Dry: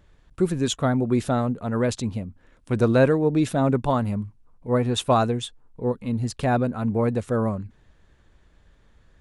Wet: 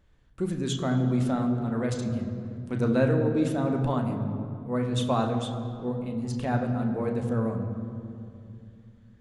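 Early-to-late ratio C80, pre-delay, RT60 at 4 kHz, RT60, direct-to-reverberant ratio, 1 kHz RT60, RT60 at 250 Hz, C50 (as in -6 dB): 7.5 dB, 3 ms, 1.5 s, 2.5 s, 3.0 dB, 2.3 s, 3.6 s, 6.5 dB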